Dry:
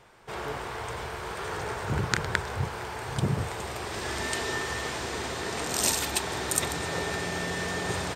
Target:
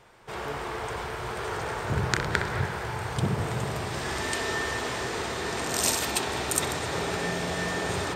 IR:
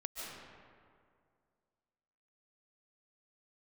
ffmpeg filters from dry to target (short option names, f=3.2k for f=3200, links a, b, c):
-filter_complex "[0:a]asplit=2[a][b];[1:a]atrim=start_sample=2205,lowpass=3.8k,adelay=63[c];[b][c]afir=irnorm=-1:irlink=0,volume=-3dB[d];[a][d]amix=inputs=2:normalize=0"